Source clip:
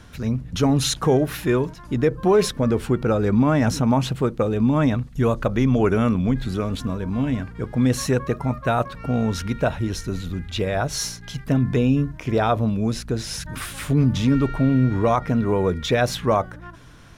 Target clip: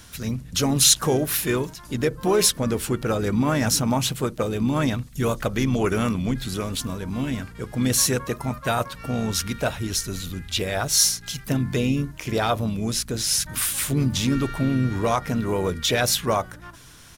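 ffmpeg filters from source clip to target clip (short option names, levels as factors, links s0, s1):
-filter_complex "[0:a]asplit=3[s0][s1][s2];[s1]asetrate=37084,aresample=44100,atempo=1.18921,volume=0.251[s3];[s2]asetrate=55563,aresample=44100,atempo=0.793701,volume=0.126[s4];[s0][s3][s4]amix=inputs=3:normalize=0,crystalizer=i=5:c=0,volume=0.596"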